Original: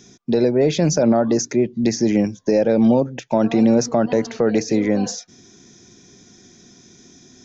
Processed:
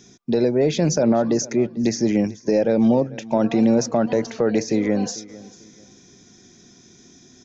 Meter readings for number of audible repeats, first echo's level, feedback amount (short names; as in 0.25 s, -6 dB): 2, -20.0 dB, 28%